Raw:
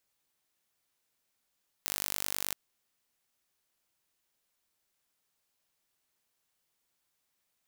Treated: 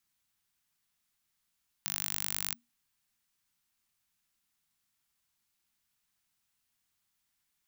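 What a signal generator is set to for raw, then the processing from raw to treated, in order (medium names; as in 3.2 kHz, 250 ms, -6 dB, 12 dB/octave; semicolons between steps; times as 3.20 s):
pulse train 49.5 per s, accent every 0, -6 dBFS 0.68 s
peaking EQ 750 Hz -13 dB 0.61 oct; frequency shift -240 Hz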